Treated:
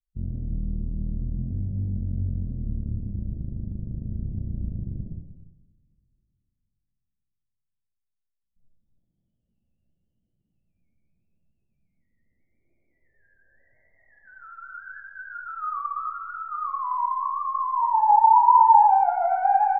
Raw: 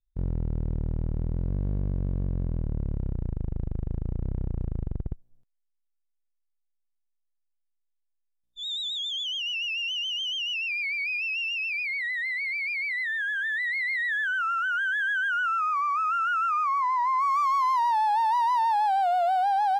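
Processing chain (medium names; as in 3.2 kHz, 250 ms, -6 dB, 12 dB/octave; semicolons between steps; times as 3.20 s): coarse spectral quantiser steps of 15 dB; bass shelf 94 Hz +4.5 dB; waveshaping leveller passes 2; peak limiter -20.5 dBFS, peak gain reduction 3 dB; low-pass sweep 640 Hz -> 1.3 kHz, 17.59–19.47 s; on a send: delay 283 ms -18.5 dB; on the sum: two-slope reverb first 0.95 s, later 3.4 s, from -26 dB, DRR -1.5 dB; low-pass sweep 190 Hz -> 1.2 kHz, 11.86–14.96 s; trim -9 dB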